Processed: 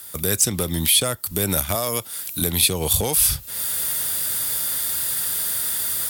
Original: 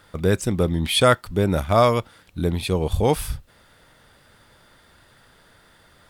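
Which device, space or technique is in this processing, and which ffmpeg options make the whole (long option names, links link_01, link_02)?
FM broadcast chain: -filter_complex "[0:a]highpass=frequency=44:width=0.5412,highpass=frequency=44:width=1.3066,dynaudnorm=framelen=190:gausssize=3:maxgain=15dB,acrossover=split=100|740|6000[link_01][link_02][link_03][link_04];[link_01]acompressor=threshold=-26dB:ratio=4[link_05];[link_02]acompressor=threshold=-16dB:ratio=4[link_06];[link_03]acompressor=threshold=-25dB:ratio=4[link_07];[link_04]acompressor=threshold=-47dB:ratio=4[link_08];[link_05][link_06][link_07][link_08]amix=inputs=4:normalize=0,aemphasis=mode=production:type=75fm,alimiter=limit=-12dB:level=0:latency=1:release=227,asoftclip=type=hard:threshold=-14dB,lowpass=frequency=15000:width=0.5412,lowpass=frequency=15000:width=1.3066,aemphasis=mode=production:type=75fm,asettb=1/sr,asplit=3[link_09][link_10][link_11];[link_09]atrim=end=1.754[link_12];[link_10]atrim=start=1.75:end=2.42,asetpts=PTS-STARTPTS,afade=type=in:duration=0.004:curve=qsin,afade=type=out:start_time=0.666:duration=0.004:curve=qsin,highpass=frequency=190:poles=1[link_13];[link_11]atrim=start=2.416[link_14];[link_12][link_13]acrossfade=duration=0.004:curve1=hsin:curve2=qsin[link_15];[link_15][link_14]acrossfade=duration=0.004:curve1=qsin:curve2=hsin,volume=-1dB"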